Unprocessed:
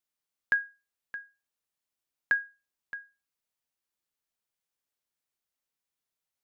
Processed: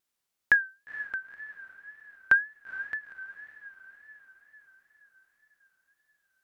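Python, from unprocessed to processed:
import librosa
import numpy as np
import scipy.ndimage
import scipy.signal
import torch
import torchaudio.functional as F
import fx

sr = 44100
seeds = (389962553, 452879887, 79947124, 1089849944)

y = fx.echo_diffused(x, sr, ms=468, feedback_pct=57, wet_db=-14)
y = fx.wow_flutter(y, sr, seeds[0], rate_hz=2.1, depth_cents=100.0)
y = F.gain(torch.from_numpy(y), 5.5).numpy()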